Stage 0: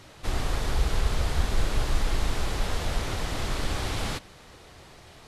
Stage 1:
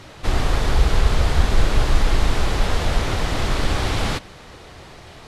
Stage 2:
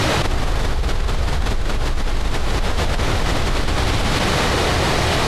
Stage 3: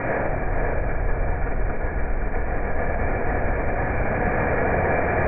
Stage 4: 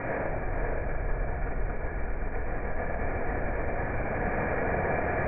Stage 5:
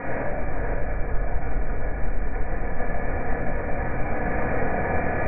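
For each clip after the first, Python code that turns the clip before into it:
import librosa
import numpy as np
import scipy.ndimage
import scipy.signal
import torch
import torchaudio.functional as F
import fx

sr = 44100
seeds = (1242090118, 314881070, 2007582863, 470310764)

y1 = fx.high_shelf(x, sr, hz=7200.0, db=-8.0)
y1 = y1 * librosa.db_to_amplitude(8.5)
y2 = fx.env_flatten(y1, sr, amount_pct=100)
y2 = y2 * librosa.db_to_amplitude(-8.0)
y3 = scipy.signal.sosfilt(scipy.signal.cheby1(6, 9, 2400.0, 'lowpass', fs=sr, output='sos'), y2)
y3 = y3 + 10.0 ** (-5.5 / 20.0) * np.pad(y3, (int(522 * sr / 1000.0), 0))[:len(y3)]
y3 = fx.room_shoebox(y3, sr, seeds[0], volume_m3=1700.0, walls='mixed', distance_m=1.8)
y3 = y3 * librosa.db_to_amplitude(-2.5)
y4 = y3 + 10.0 ** (-9.0 / 20.0) * np.pad(y3, (int(110 * sr / 1000.0), 0))[:len(y3)]
y4 = y4 * librosa.db_to_amplitude(-7.5)
y5 = fx.room_shoebox(y4, sr, seeds[1], volume_m3=600.0, walls='furnished', distance_m=1.9)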